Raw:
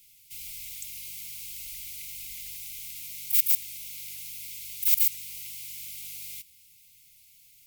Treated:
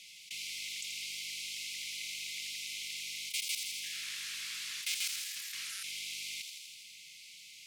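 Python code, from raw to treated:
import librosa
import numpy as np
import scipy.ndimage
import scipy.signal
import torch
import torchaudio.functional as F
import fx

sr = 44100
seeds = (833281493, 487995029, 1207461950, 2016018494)

y = fx.band_shelf(x, sr, hz=1200.0, db=-13.5, octaves=1.1)
y = fx.echo_pitch(y, sr, ms=94, semitones=-4, count=3, db_per_echo=-6.0, at=(3.74, 5.83))
y = fx.level_steps(y, sr, step_db=23)
y = fx.bandpass_edges(y, sr, low_hz=350.0, high_hz=4800.0)
y = fx.echo_wet_highpass(y, sr, ms=82, feedback_pct=65, hz=3100.0, wet_db=-8)
y = fx.env_flatten(y, sr, amount_pct=50)
y = y * librosa.db_to_amplitude(6.0)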